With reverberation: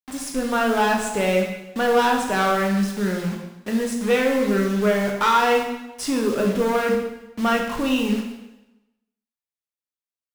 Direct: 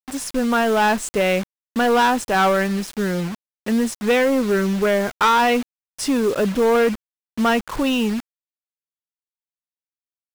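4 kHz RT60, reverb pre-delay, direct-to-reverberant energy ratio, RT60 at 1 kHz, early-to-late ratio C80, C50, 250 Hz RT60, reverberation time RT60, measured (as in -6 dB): 0.90 s, 6 ms, 0.5 dB, 1.0 s, 7.0 dB, 4.0 dB, 0.95 s, 1.0 s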